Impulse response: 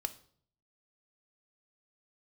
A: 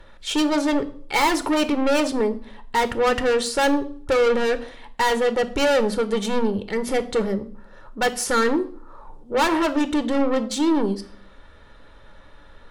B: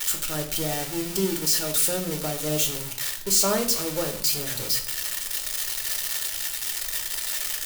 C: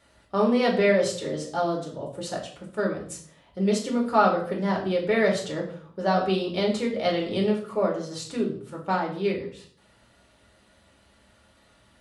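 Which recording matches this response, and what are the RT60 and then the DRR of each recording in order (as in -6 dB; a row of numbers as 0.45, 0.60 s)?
A; 0.55, 0.55, 0.55 s; 10.0, 2.5, -1.5 dB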